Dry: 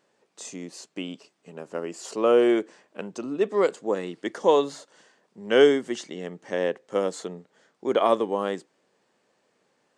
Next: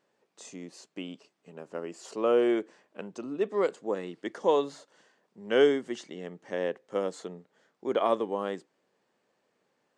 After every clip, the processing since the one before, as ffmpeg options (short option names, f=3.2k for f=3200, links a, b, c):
-af "highshelf=f=5.8k:g=-6,volume=-5dB"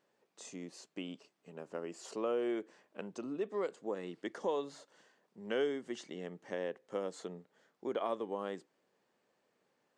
-af "acompressor=threshold=-34dB:ratio=2,volume=-3dB"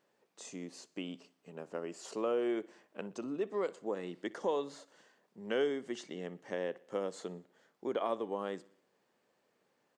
-af "aecho=1:1:61|122|183|244:0.0794|0.0429|0.0232|0.0125,volume=1.5dB"